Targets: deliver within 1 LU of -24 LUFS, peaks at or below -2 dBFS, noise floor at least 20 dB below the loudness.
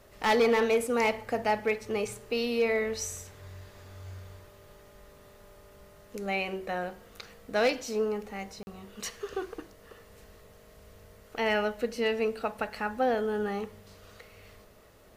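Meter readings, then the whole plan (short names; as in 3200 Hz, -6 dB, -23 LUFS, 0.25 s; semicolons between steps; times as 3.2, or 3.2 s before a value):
clipped 0.2%; flat tops at -18.5 dBFS; dropouts 1; longest dropout 41 ms; loudness -30.0 LUFS; peak -18.5 dBFS; loudness target -24.0 LUFS
-> clip repair -18.5 dBFS; interpolate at 8.63, 41 ms; gain +6 dB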